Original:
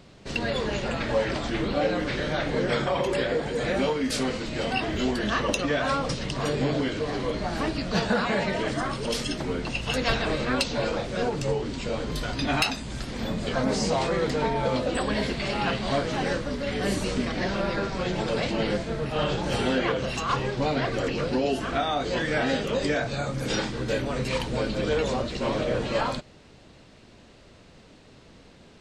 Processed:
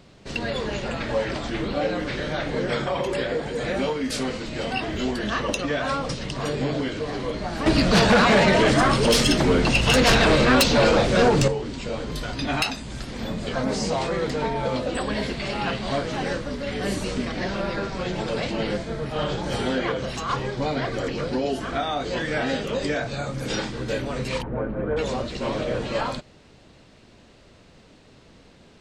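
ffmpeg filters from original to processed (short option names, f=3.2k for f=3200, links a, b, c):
-filter_complex "[0:a]asettb=1/sr,asplit=3[a][b][c];[a]atrim=end=7.664[d];[b]atrim=start=7.66:end=11.48,asetpts=PTS-STARTPTS,afade=t=in:d=0.004:c=qsin,afade=t=out:st=3.816:d=0.004:c=qsin,aeval=exprs='0.251*sin(PI/2*2.51*val(0)/0.251)':c=same[e];[c]atrim=start=11.476[f];[d][e]acrossfade=d=0.004:c1=hsin:c2=qsin[g];[g][f]acrossfade=d=0.004:c1=qsin:c2=hsin,asettb=1/sr,asplit=3[h][i][j];[h]atrim=end=18.814[k];[i]atrim=start=18.81:end=21.83,asetpts=PTS-STARTPTS,afade=t=in:d=0.004:c=qsin,afade=t=out:st=3.016:d=0.004:c=qsin,bandreject=f=2.7k:w=12[l];[j]atrim=start=21.826[m];[k][l]acrossfade=d=0.004:c1=hsin:c2=qsin[n];[n][m]acrossfade=d=0.004:c1=qsin:c2=hsin,asplit=3[o][p][q];[o]afade=t=out:st=24.41:d=0.02[r];[p]lowpass=f=1.6k:w=0.5412,lowpass=f=1.6k:w=1.3066,afade=t=in:st=24.41:d=0.02,afade=t=out:st=24.96:d=0.02[s];[q]afade=t=in:st=24.96:d=0.02[t];[r][s][t]amix=inputs=3:normalize=0"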